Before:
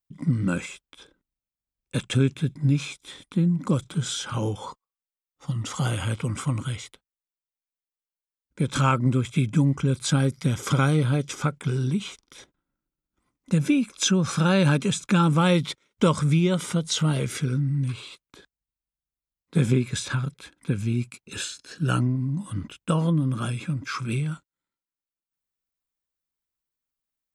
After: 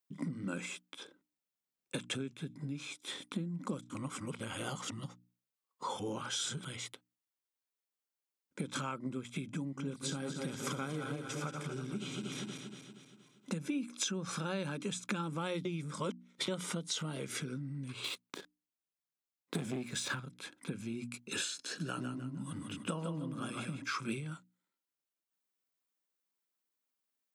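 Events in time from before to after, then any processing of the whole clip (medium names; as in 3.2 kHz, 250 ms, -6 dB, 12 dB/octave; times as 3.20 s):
3.90–6.65 s: reverse
9.63–13.66 s: backward echo that repeats 118 ms, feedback 70%, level -7 dB
15.65–16.48 s: reverse
18.04–20.20 s: waveshaping leveller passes 2
21.50–23.82 s: feedback delay 154 ms, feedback 27%, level -5.5 dB
whole clip: hum notches 60/120/180/240/300 Hz; compression 12:1, threshold -33 dBFS; Chebyshev high-pass 230 Hz, order 2; trim +1 dB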